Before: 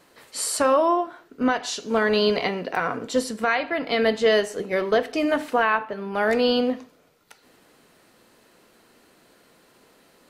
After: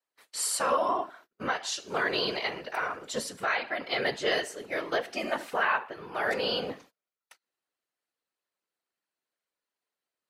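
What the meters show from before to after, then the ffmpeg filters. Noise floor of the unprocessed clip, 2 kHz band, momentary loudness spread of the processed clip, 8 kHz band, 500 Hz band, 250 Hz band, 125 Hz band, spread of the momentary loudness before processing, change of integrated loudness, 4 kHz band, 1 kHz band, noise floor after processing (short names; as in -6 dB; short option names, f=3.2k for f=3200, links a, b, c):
-58 dBFS, -4.0 dB, 8 LU, -3.0 dB, -10.0 dB, -14.0 dB, -8.0 dB, 7 LU, -7.0 dB, -3.5 dB, -6.0 dB, under -85 dBFS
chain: -af "highpass=f=980:p=1,afftfilt=real='hypot(re,im)*cos(2*PI*random(0))':imag='hypot(re,im)*sin(2*PI*random(1))':win_size=512:overlap=0.75,agate=range=-28dB:threshold=-56dB:ratio=16:detection=peak,volume=3dB"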